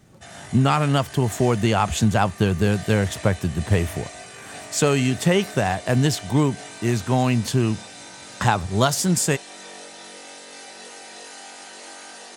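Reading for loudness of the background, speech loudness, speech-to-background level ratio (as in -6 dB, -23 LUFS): -38.5 LUFS, -21.5 LUFS, 17.0 dB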